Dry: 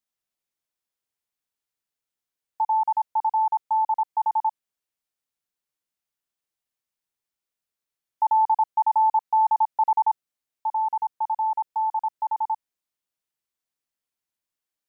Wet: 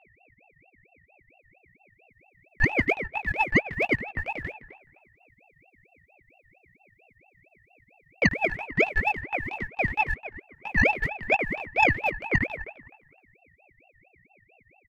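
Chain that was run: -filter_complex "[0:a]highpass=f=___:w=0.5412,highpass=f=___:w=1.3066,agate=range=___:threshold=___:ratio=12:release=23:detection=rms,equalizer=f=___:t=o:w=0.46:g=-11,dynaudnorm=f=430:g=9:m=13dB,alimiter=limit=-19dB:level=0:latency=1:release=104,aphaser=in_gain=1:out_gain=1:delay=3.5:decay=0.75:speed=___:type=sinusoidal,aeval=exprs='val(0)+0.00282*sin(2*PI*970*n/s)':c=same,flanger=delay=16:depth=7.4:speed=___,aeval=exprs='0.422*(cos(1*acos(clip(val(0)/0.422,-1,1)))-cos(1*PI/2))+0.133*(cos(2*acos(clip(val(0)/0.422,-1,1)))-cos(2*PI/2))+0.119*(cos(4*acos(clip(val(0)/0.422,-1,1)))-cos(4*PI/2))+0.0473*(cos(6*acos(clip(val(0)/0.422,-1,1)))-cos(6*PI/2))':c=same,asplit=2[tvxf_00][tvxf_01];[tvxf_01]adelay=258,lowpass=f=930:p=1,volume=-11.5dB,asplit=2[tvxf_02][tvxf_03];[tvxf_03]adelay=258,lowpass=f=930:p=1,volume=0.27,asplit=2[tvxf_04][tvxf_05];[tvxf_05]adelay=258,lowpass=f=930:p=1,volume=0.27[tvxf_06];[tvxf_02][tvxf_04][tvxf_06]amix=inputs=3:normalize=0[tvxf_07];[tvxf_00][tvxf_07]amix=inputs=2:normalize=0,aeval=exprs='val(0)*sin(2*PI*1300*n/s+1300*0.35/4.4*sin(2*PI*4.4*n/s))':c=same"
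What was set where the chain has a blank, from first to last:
620, 620, -15dB, -38dB, 920, 0.97, 2.8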